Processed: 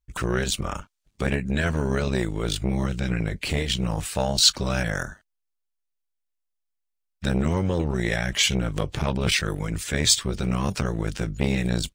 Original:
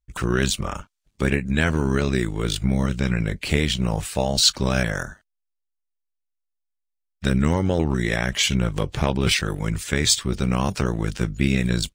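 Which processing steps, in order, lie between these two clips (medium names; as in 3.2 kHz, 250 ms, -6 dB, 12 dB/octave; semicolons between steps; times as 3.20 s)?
transformer saturation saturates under 550 Hz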